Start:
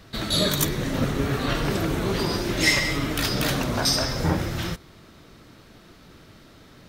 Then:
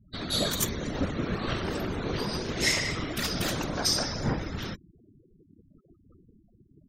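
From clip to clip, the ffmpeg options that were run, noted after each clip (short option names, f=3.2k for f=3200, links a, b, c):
-af "afftfilt=real='hypot(re,im)*cos(2*PI*random(0))':imag='hypot(re,im)*sin(2*PI*random(1))':win_size=512:overlap=0.75,afftfilt=real='re*gte(hypot(re,im),0.00631)':imag='im*gte(hypot(re,im),0.00631)':win_size=1024:overlap=0.75,adynamicequalizer=threshold=0.00708:dfrequency=6900:dqfactor=1.6:tfrequency=6900:tqfactor=1.6:attack=5:release=100:ratio=0.375:range=2.5:mode=boostabove:tftype=bell"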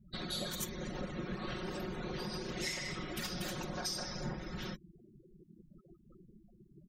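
-af "aecho=1:1:5.5:0.86,acompressor=threshold=-36dB:ratio=3,volume=-3.5dB"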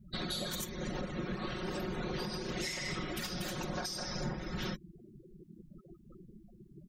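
-af "alimiter=level_in=8dB:limit=-24dB:level=0:latency=1:release=366,volume=-8dB,volume=5dB"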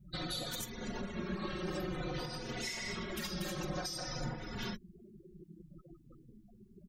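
-filter_complex "[0:a]asplit=2[a][b];[b]adelay=3.4,afreqshift=-0.53[c];[a][c]amix=inputs=2:normalize=1,volume=1.5dB"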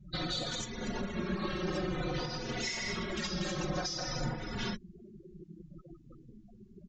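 -af "aresample=16000,aresample=44100,volume=4dB"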